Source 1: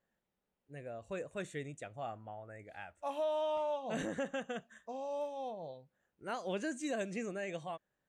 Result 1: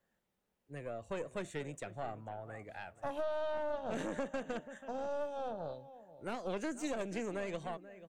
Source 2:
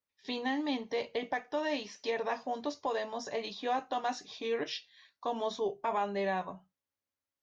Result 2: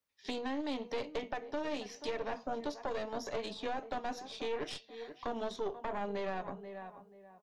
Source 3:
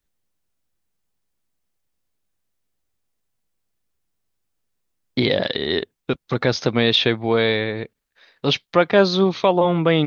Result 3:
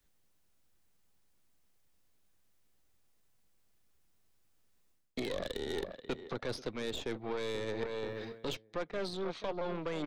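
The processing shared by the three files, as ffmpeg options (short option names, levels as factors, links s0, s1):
-filter_complex "[0:a]asplit=2[s0][s1];[s1]adelay=484,lowpass=f=1700:p=1,volume=0.158,asplit=2[s2][s3];[s3]adelay=484,lowpass=f=1700:p=1,volume=0.29,asplit=2[s4][s5];[s5]adelay=484,lowpass=f=1700:p=1,volume=0.29[s6];[s0][s2][s4][s6]amix=inputs=4:normalize=0,areverse,acompressor=threshold=0.0316:ratio=8,areverse,aeval=exprs='0.119*(cos(1*acos(clip(val(0)/0.119,-1,1)))-cos(1*PI/2))+0.0188*(cos(6*acos(clip(val(0)/0.119,-1,1)))-cos(6*PI/2))':c=same,acrossover=split=280|600[s7][s8][s9];[s7]acompressor=threshold=0.00447:ratio=4[s10];[s8]acompressor=threshold=0.00891:ratio=4[s11];[s9]acompressor=threshold=0.00501:ratio=4[s12];[s10][s11][s12]amix=inputs=3:normalize=0,volume=1.41"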